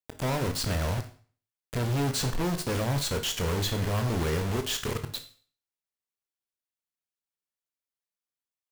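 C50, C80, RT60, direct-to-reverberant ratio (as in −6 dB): 11.5 dB, 15.5 dB, 0.45 s, 6.5 dB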